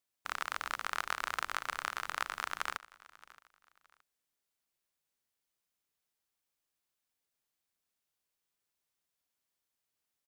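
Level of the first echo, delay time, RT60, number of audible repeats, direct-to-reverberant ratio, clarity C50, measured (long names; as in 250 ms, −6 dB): −20.5 dB, 621 ms, no reverb audible, 2, no reverb audible, no reverb audible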